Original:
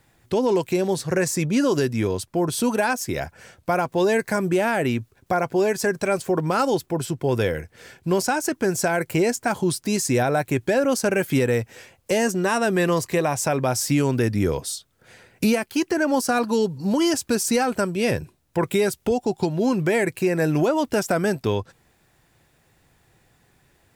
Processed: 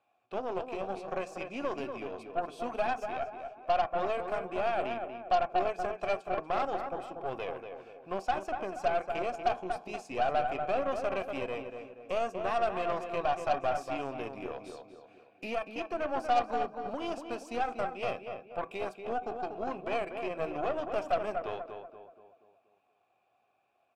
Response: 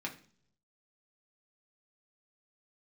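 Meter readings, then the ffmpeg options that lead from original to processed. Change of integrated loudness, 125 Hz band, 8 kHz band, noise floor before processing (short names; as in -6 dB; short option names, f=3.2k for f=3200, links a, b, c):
-11.5 dB, -23.5 dB, under -25 dB, -63 dBFS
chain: -filter_complex "[0:a]asplit=3[a][b][c];[a]bandpass=f=730:t=q:w=8,volume=0dB[d];[b]bandpass=f=1.09k:t=q:w=8,volume=-6dB[e];[c]bandpass=f=2.44k:t=q:w=8,volume=-9dB[f];[d][e][f]amix=inputs=3:normalize=0,asplit=2[g][h];[h]adelay=239,lowpass=f=2.3k:p=1,volume=-6dB,asplit=2[i][j];[j]adelay=239,lowpass=f=2.3k:p=1,volume=0.46,asplit=2[k][l];[l]adelay=239,lowpass=f=2.3k:p=1,volume=0.46,asplit=2[m][n];[n]adelay=239,lowpass=f=2.3k:p=1,volume=0.46,asplit=2[o][p];[p]adelay=239,lowpass=f=2.3k:p=1,volume=0.46,asplit=2[q][r];[r]adelay=239,lowpass=f=2.3k:p=1,volume=0.46[s];[g][i][k][m][o][q][s]amix=inputs=7:normalize=0,asplit=2[t][u];[1:a]atrim=start_sample=2205[v];[u][v]afir=irnorm=-1:irlink=0,volume=-7dB[w];[t][w]amix=inputs=2:normalize=0,aeval=exprs='0.224*(cos(1*acos(clip(val(0)/0.224,-1,1)))-cos(1*PI/2))+0.0178*(cos(8*acos(clip(val(0)/0.224,-1,1)))-cos(8*PI/2))':c=same,volume=-3dB"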